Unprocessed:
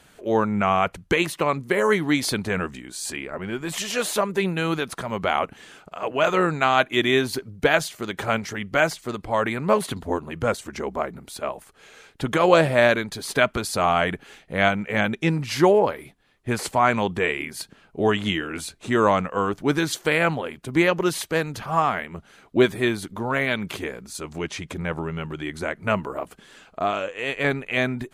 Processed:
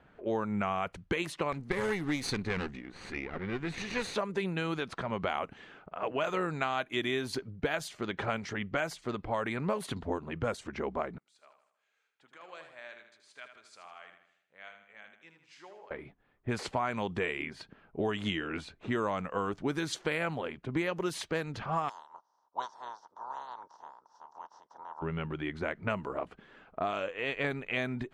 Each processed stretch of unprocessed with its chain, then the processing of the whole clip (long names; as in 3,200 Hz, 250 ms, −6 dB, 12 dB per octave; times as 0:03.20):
0:01.52–0:04.15: lower of the sound and its delayed copy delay 0.48 ms + notch filter 620 Hz, Q 6.3
0:11.18–0:15.91: resonant band-pass 7,900 Hz, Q 2.2 + repeating echo 79 ms, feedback 48%, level −8 dB
0:21.88–0:25.01: ceiling on every frequency bin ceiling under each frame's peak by 28 dB + pair of resonant band-passes 2,300 Hz, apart 2.6 octaves
whole clip: low-pass that shuts in the quiet parts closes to 1,600 Hz, open at −17 dBFS; high-shelf EQ 12,000 Hz −4 dB; downward compressor 5 to 1, threshold −24 dBFS; level −4.5 dB